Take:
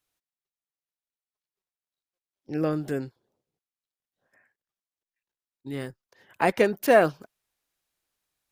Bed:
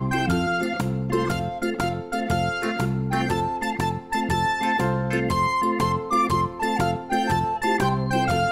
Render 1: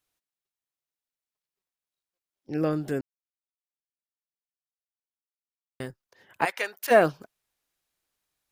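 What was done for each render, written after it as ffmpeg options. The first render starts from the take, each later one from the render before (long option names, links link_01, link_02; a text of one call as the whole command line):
ffmpeg -i in.wav -filter_complex "[0:a]asplit=3[link_01][link_02][link_03];[link_01]afade=type=out:start_time=6.44:duration=0.02[link_04];[link_02]highpass=1100,afade=type=in:start_time=6.44:duration=0.02,afade=type=out:start_time=6.9:duration=0.02[link_05];[link_03]afade=type=in:start_time=6.9:duration=0.02[link_06];[link_04][link_05][link_06]amix=inputs=3:normalize=0,asplit=3[link_07][link_08][link_09];[link_07]atrim=end=3.01,asetpts=PTS-STARTPTS,afade=type=out:start_time=3.006:duration=0.004:curve=hsin[link_10];[link_08]atrim=start=3.01:end=5.8,asetpts=PTS-STARTPTS,volume=0[link_11];[link_09]atrim=start=5.8,asetpts=PTS-STARTPTS,afade=type=in:duration=0.004:curve=hsin[link_12];[link_10][link_11][link_12]concat=n=3:v=0:a=1" out.wav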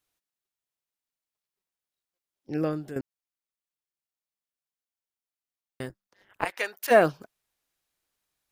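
ffmpeg -i in.wav -filter_complex "[0:a]asettb=1/sr,asplit=3[link_01][link_02][link_03];[link_01]atrim=end=5.894[link_04];[link_02]atrim=start=5.89:end=6.59,asetpts=PTS-STARTPTS,afade=type=in:duration=0.004:curve=qsin,afade=type=out:start_time=0.696:duration=0.004:curve=qsin,tremolo=f=200:d=0.974[link_05];[link_03]atrim=start=6.586[link_06];[link_04][link_05]acrossfade=duration=0.004:curve1=hsin:curve2=qsin[link_07];[link_07][link_06]acrossfade=duration=0.004:curve1=qsin:curve2=hsin,asplit=2[link_08][link_09];[link_08]atrim=end=2.96,asetpts=PTS-STARTPTS,afade=type=out:start_time=2.55:duration=0.41:silence=0.281838[link_10];[link_09]atrim=start=2.96,asetpts=PTS-STARTPTS,afade=type=in:duration=0.004:curve=hsin:silence=0.281838[link_11];[link_10][link_11]concat=n=2:v=0:a=1" out.wav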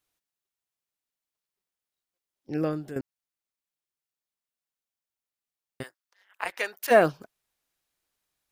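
ffmpeg -i in.wav -filter_complex "[0:a]asplit=3[link_01][link_02][link_03];[link_01]afade=type=out:start_time=5.82:duration=0.02[link_04];[link_02]highpass=1000,afade=type=in:start_time=5.82:duration=0.02,afade=type=out:start_time=6.44:duration=0.02[link_05];[link_03]afade=type=in:start_time=6.44:duration=0.02[link_06];[link_04][link_05][link_06]amix=inputs=3:normalize=0" out.wav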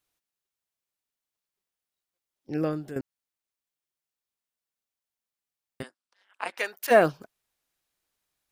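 ffmpeg -i in.wav -filter_complex "[0:a]asettb=1/sr,asplit=3[link_01][link_02][link_03];[link_01]atrim=end=5.824[link_04];[link_02]atrim=start=5.82:end=6.58,asetpts=PTS-STARTPTS,afade=type=in:duration=0.004:curve=qsin,afade=type=out:start_time=0.756:duration=0.004:curve=qsin,highpass=170,equalizer=frequency=240:width_type=q:width=4:gain=9,equalizer=frequency=1900:width_type=q:width=4:gain=-6,equalizer=frequency=6600:width_type=q:width=4:gain=-5,lowpass=frequency=9700:width=0.5412,lowpass=frequency=9700:width=1.3066[link_05];[link_03]atrim=start=6.576[link_06];[link_04][link_05]acrossfade=duration=0.004:curve1=hsin:curve2=qsin[link_07];[link_07][link_06]acrossfade=duration=0.004:curve1=qsin:curve2=hsin" out.wav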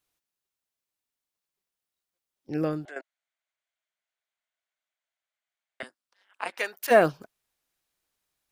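ffmpeg -i in.wav -filter_complex "[0:a]asettb=1/sr,asplit=3[link_01][link_02][link_03];[link_01]atrim=end=2.854[link_04];[link_02]atrim=start=2.85:end=5.83,asetpts=PTS-STARTPTS,afade=type=in:duration=0.004:curve=qsin,afade=type=out:start_time=2.976:duration=0.004:curve=qsin,highpass=frequency=440:width=0.5412,highpass=frequency=440:width=1.3066,equalizer=frequency=460:width_type=q:width=4:gain=-8,equalizer=frequency=650:width_type=q:width=4:gain=9,equalizer=frequency=1500:width_type=q:width=4:gain=7,equalizer=frequency=2100:width_type=q:width=4:gain=8,equalizer=frequency=3300:width_type=q:width=4:gain=4,equalizer=frequency=5300:width_type=q:width=4:gain=-7,lowpass=frequency=7500:width=0.5412,lowpass=frequency=7500:width=1.3066[link_05];[link_03]atrim=start=5.826[link_06];[link_04][link_05]acrossfade=duration=0.004:curve1=hsin:curve2=qsin[link_07];[link_07][link_06]acrossfade=duration=0.004:curve1=qsin:curve2=hsin" out.wav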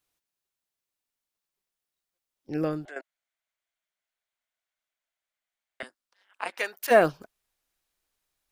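ffmpeg -i in.wav -af "asubboost=boost=2.5:cutoff=59" out.wav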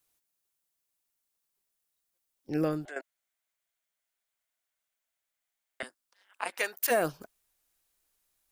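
ffmpeg -i in.wav -filter_complex "[0:a]acrossover=split=7000[link_01][link_02];[link_01]alimiter=limit=-16dB:level=0:latency=1:release=267[link_03];[link_02]acontrast=85[link_04];[link_03][link_04]amix=inputs=2:normalize=0" out.wav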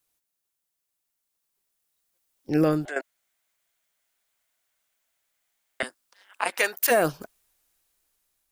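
ffmpeg -i in.wav -af "alimiter=limit=-18dB:level=0:latency=1,dynaudnorm=framelen=600:gausssize=7:maxgain=9.5dB" out.wav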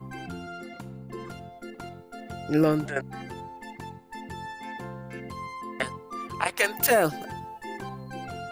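ffmpeg -i in.wav -i bed.wav -filter_complex "[1:a]volume=-15.5dB[link_01];[0:a][link_01]amix=inputs=2:normalize=0" out.wav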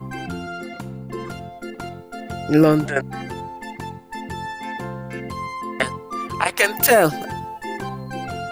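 ffmpeg -i in.wav -af "volume=8dB,alimiter=limit=-3dB:level=0:latency=1" out.wav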